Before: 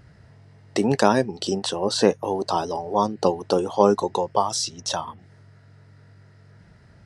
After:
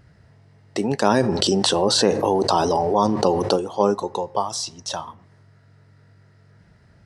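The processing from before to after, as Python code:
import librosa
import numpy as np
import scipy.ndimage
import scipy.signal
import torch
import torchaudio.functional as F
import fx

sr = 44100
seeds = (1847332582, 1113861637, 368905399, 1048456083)

y = fx.rev_plate(x, sr, seeds[0], rt60_s=0.76, hf_ratio=0.55, predelay_ms=0, drr_db=19.5)
y = fx.env_flatten(y, sr, amount_pct=70, at=(1.06, 3.56))
y = y * librosa.db_to_amplitude(-2.0)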